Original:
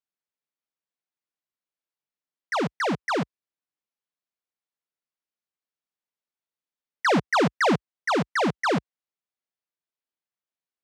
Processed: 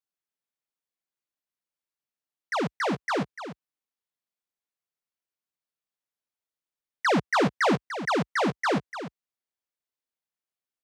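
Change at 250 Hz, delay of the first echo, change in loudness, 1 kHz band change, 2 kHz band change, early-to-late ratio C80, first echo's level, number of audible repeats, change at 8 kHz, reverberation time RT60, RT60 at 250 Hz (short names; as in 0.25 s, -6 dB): -1.5 dB, 0.295 s, -2.0 dB, -1.5 dB, -1.5 dB, none, -11.0 dB, 1, -1.5 dB, none, none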